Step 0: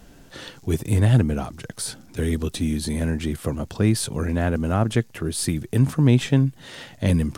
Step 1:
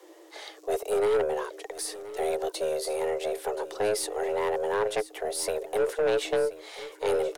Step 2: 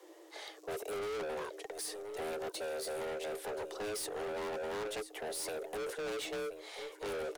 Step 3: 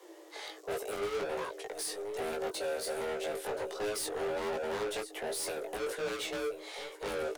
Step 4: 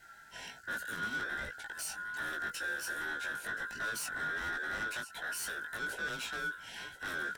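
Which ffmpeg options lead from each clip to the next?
-af "afreqshift=310,aeval=exprs='(tanh(6.31*val(0)+0.15)-tanh(0.15))/6.31':c=same,aecho=1:1:1027:0.158,volume=-4dB"
-af "asoftclip=type=hard:threshold=-32.5dB,volume=-4.5dB"
-af "flanger=delay=17:depth=3.2:speed=1.3,volume=6.5dB"
-af "afftfilt=real='real(if(lt(b,960),b+48*(1-2*mod(floor(b/48),2)),b),0)':imag='imag(if(lt(b,960),b+48*(1-2*mod(floor(b/48),2)),b),0)':win_size=2048:overlap=0.75,volume=-2.5dB"

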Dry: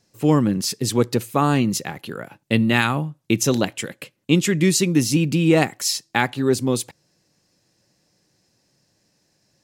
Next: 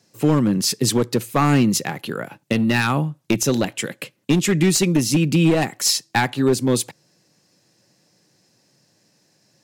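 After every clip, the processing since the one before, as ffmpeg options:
-af "highpass=f=110:w=0.5412,highpass=f=110:w=1.3066,aeval=exprs='clip(val(0),-1,0.168)':c=same,alimiter=limit=-11.5dB:level=0:latency=1:release=382,volume=4.5dB"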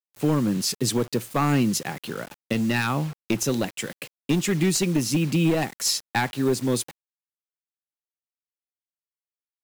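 -af "acrusher=bits=5:mix=0:aa=0.000001,volume=-5dB"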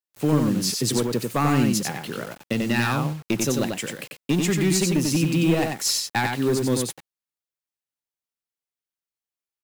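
-af "aecho=1:1:92:0.631"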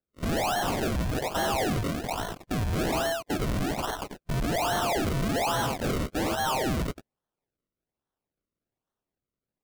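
-af "afftfilt=real='real(if(lt(b,1008),b+24*(1-2*mod(floor(b/24),2)),b),0)':imag='imag(if(lt(b,1008),b+24*(1-2*mod(floor(b/24),2)),b),0)':win_size=2048:overlap=0.75,acrusher=samples=36:mix=1:aa=0.000001:lfo=1:lforange=36:lforate=1.2,volume=27.5dB,asoftclip=hard,volume=-27.5dB,volume=2dB"

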